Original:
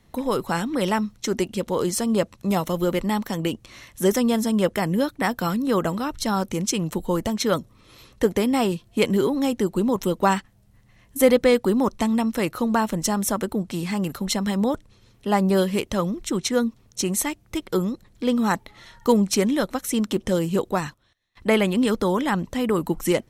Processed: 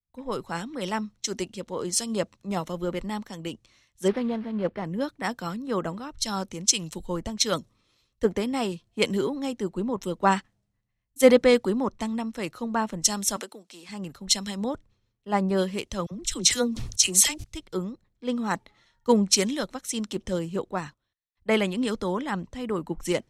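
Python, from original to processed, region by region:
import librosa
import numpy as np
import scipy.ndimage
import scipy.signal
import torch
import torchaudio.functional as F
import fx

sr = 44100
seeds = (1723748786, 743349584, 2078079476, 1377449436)

y = fx.chain(x, sr, fx.cvsd(bps=32000),
    fx.resample_linear(factor=6), at=(4.08, 4.85))
y = fx.chain(y, sr, fx.highpass(hz=400.0, slope=12),
    fx.band_squash(depth_pct=100), at=(13.36, 13.89))
y = fx.chain(y, sr, fx.peak_eq(hz=11000.0, db=3.5, octaves=1.9),
    fx.dispersion(late='lows', ms=51.0, hz=920.0),
    fx.sustainer(db_per_s=66.0), at=(16.06, 17.44))
y = scipy.signal.sosfilt(scipy.signal.butter(2, 6400.0, 'lowpass', fs=sr, output='sos'), y)
y = fx.high_shelf(y, sr, hz=4800.0, db=10.5)
y = fx.band_widen(y, sr, depth_pct=100)
y = y * 10.0 ** (-6.5 / 20.0)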